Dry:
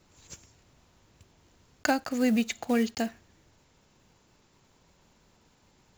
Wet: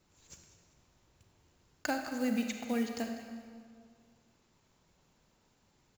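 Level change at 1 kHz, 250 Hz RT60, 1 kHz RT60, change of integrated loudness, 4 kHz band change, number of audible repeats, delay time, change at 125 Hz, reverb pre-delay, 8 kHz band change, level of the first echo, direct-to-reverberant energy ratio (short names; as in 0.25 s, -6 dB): -7.0 dB, 2.0 s, 2.0 s, -7.5 dB, -7.0 dB, 1, 0.196 s, n/a, 34 ms, -6.5 dB, -15.5 dB, 4.0 dB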